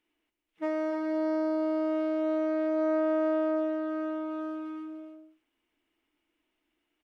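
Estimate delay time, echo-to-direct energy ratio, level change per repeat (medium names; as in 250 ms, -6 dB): 290 ms, -8.5 dB, no regular repeats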